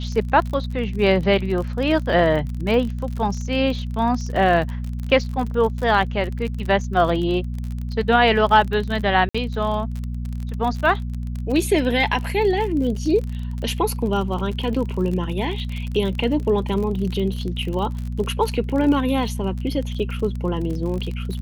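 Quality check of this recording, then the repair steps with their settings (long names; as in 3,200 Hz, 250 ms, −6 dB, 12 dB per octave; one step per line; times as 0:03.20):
surface crackle 42 per second −27 dBFS
mains hum 60 Hz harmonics 4 −27 dBFS
0:09.29–0:09.35: drop-out 55 ms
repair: click removal
hum removal 60 Hz, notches 4
repair the gap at 0:09.29, 55 ms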